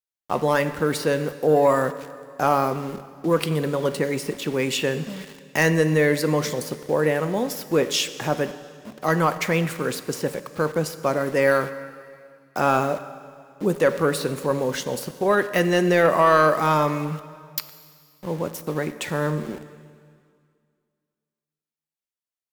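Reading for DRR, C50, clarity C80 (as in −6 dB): 12.0 dB, 13.0 dB, 14.0 dB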